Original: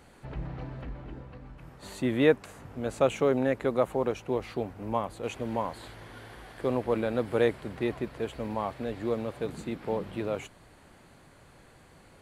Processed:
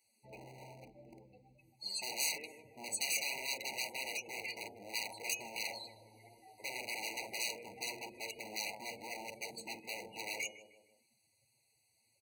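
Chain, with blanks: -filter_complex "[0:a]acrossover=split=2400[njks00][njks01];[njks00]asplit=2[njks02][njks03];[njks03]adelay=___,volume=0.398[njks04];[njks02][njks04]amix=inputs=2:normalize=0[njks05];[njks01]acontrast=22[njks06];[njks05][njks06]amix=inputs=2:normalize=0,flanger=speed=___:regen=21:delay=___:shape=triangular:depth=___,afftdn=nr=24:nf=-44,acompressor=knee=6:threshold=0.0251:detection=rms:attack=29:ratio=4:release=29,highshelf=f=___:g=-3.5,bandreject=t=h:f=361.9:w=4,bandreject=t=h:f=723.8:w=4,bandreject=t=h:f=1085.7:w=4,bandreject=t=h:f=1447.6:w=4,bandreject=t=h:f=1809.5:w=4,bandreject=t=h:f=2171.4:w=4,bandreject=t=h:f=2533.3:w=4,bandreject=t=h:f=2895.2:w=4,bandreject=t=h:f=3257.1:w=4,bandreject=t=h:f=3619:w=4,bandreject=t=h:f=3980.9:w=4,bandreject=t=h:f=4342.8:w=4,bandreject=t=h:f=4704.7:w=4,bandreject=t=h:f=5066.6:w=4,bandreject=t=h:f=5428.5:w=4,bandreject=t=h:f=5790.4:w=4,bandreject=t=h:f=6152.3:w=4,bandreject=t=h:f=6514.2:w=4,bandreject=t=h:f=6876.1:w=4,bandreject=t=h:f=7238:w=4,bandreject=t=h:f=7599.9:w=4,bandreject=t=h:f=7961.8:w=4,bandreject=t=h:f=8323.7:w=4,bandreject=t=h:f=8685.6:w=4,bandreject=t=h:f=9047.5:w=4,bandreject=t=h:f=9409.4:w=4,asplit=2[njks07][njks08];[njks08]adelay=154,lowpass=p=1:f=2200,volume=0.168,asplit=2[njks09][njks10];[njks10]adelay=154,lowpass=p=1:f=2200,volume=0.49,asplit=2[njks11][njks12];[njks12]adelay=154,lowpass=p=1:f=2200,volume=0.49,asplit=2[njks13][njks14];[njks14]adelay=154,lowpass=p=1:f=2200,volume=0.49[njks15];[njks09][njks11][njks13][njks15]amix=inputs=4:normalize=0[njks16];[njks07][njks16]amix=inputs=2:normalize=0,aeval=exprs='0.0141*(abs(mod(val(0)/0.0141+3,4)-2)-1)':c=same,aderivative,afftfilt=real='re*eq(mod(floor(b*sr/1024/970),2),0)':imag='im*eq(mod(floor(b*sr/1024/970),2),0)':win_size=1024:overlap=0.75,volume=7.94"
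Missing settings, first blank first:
46, 1.9, 8.4, 1.2, 10000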